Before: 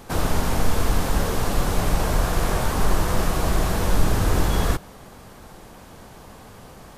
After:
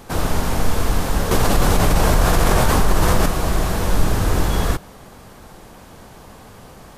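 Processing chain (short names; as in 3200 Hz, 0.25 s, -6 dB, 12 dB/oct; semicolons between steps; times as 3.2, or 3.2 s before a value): 1.31–3.26 fast leveller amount 70%; gain +2 dB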